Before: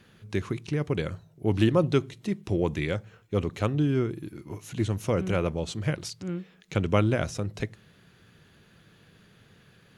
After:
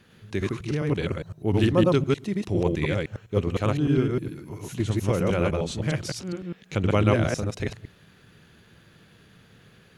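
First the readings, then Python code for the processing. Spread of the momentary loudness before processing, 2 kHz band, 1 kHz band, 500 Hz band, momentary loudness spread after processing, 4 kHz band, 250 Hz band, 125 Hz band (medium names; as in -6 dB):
12 LU, +3.0 dB, +3.0 dB, +3.0 dB, 13 LU, +3.0 dB, +3.0 dB, +3.0 dB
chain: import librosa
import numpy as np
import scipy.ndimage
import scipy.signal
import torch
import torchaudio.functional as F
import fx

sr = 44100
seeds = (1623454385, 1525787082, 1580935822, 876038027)

y = fx.reverse_delay(x, sr, ms=102, wet_db=0.0)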